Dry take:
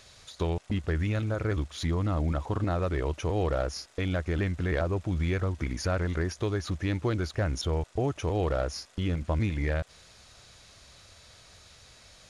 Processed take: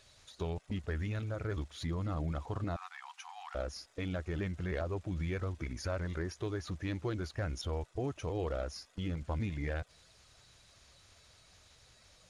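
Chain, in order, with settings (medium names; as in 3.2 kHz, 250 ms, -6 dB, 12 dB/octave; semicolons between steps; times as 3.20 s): coarse spectral quantiser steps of 15 dB; 2.76–3.55 s: brick-wall FIR high-pass 720 Hz; trim -7.5 dB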